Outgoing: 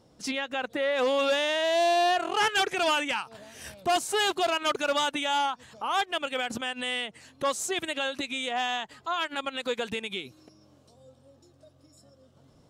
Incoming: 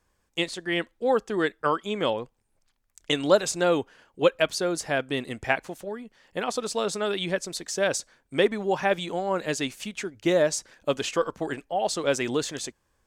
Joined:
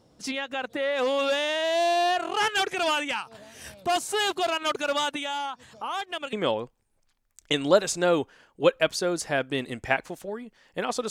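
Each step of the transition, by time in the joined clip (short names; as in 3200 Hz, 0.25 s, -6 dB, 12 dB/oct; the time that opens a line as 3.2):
outgoing
5.15–6.33 compressor 6:1, threshold -28 dBFS
6.33 switch to incoming from 1.92 s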